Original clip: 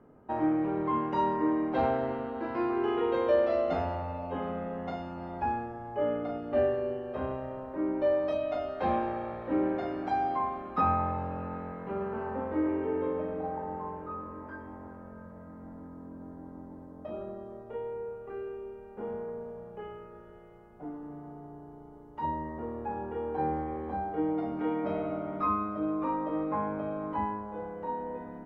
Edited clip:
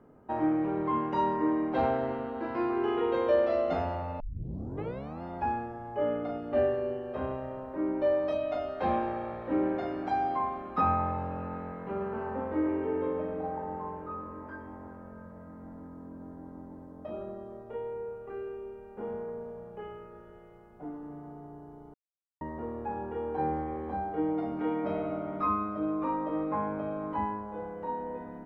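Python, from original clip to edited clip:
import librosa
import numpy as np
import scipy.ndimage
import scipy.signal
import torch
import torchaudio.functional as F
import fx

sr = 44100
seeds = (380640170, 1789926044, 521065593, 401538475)

y = fx.edit(x, sr, fx.tape_start(start_s=4.2, length_s=1.03),
    fx.silence(start_s=21.94, length_s=0.47), tone=tone)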